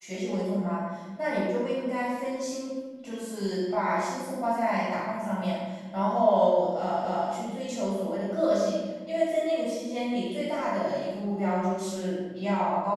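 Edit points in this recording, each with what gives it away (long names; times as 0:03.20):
0:07.05: the same again, the last 0.25 s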